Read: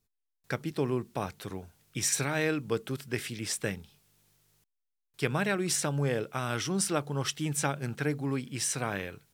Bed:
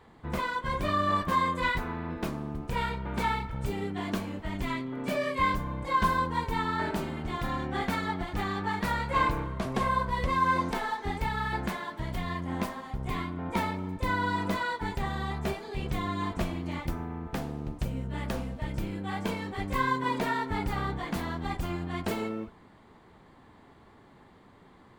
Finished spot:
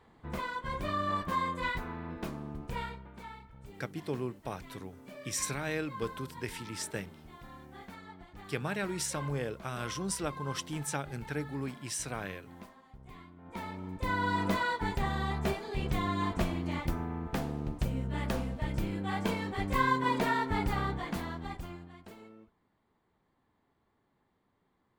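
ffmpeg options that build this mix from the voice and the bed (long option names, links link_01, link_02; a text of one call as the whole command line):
ffmpeg -i stem1.wav -i stem2.wav -filter_complex "[0:a]adelay=3300,volume=-5.5dB[link_01];[1:a]volume=12.5dB,afade=type=out:start_time=2.71:duration=0.41:silence=0.237137,afade=type=in:start_time=13.42:duration=1.05:silence=0.125893,afade=type=out:start_time=20.68:duration=1.29:silence=0.105925[link_02];[link_01][link_02]amix=inputs=2:normalize=0" out.wav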